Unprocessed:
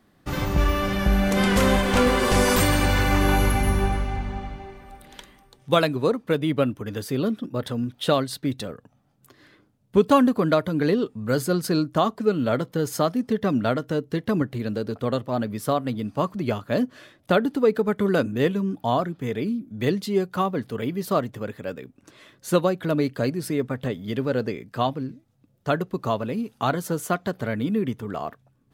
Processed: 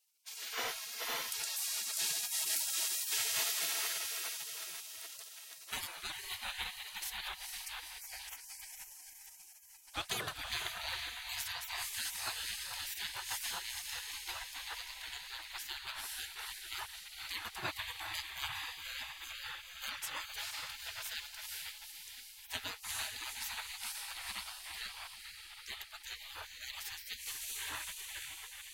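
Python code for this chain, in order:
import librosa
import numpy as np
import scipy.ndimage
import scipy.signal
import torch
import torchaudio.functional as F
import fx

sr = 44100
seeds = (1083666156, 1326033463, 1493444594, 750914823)

y = fx.ellip_highpass(x, sr, hz=1100.0, order=4, stop_db=40, at=(7.8, 8.52))
y = fx.echo_diffused(y, sr, ms=478, feedback_pct=60, wet_db=-4)
y = fx.spec_gate(y, sr, threshold_db=-30, keep='weak')
y = y * 10.0 ** (1.0 / 20.0)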